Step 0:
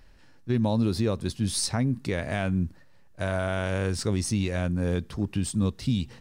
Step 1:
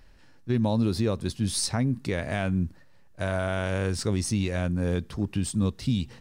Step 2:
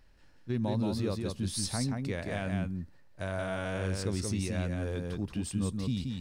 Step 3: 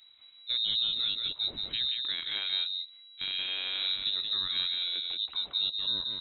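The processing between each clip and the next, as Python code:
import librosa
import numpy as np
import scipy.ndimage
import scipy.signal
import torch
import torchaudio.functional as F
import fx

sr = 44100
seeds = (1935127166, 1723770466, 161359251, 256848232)

y1 = x
y2 = y1 + 10.0 ** (-4.0 / 20.0) * np.pad(y1, (int(177 * sr / 1000.0), 0))[:len(y1)]
y2 = y2 * librosa.db_to_amplitude(-7.0)
y3 = fx.freq_invert(y2, sr, carrier_hz=3900)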